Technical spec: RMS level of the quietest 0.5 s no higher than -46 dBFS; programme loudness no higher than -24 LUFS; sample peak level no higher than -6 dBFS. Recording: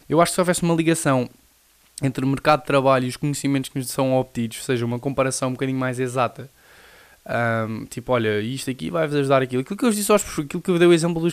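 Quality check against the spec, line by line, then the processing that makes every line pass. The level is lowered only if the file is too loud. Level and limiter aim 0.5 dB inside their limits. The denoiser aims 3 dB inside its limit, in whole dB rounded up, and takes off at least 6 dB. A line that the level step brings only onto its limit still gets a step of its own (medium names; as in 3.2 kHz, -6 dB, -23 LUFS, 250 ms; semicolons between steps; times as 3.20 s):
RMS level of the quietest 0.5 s -57 dBFS: pass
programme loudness -21.5 LUFS: fail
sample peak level -4.5 dBFS: fail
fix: trim -3 dB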